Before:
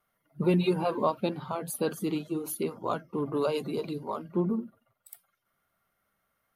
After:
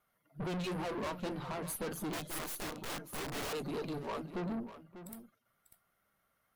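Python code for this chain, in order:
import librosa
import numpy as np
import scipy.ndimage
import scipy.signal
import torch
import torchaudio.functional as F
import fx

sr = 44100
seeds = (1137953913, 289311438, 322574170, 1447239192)

p1 = fx.vibrato(x, sr, rate_hz=11.0, depth_cents=39.0)
p2 = fx.tube_stage(p1, sr, drive_db=37.0, bias=0.55)
p3 = p2 + fx.echo_single(p2, sr, ms=594, db=-12.5, dry=0)
p4 = fx.overflow_wrap(p3, sr, gain_db=38.0, at=(2.13, 3.53))
y = p4 * 10.0 ** (1.5 / 20.0)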